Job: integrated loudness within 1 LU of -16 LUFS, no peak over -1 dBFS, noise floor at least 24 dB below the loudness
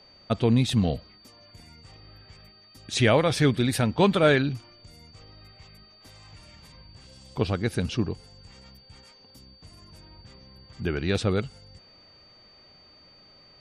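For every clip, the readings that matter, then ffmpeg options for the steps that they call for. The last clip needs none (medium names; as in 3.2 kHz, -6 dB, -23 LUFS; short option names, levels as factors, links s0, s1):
steady tone 4.6 kHz; tone level -53 dBFS; loudness -24.5 LUFS; peak level -8.0 dBFS; loudness target -16.0 LUFS
-> -af "bandreject=f=4600:w=30"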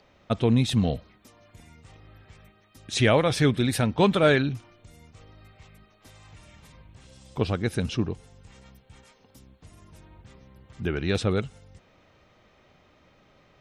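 steady tone not found; loudness -24.5 LUFS; peak level -8.0 dBFS; loudness target -16.0 LUFS
-> -af "volume=2.66,alimiter=limit=0.891:level=0:latency=1"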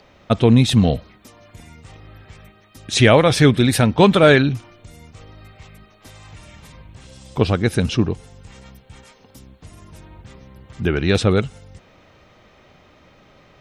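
loudness -16.0 LUFS; peak level -1.0 dBFS; noise floor -52 dBFS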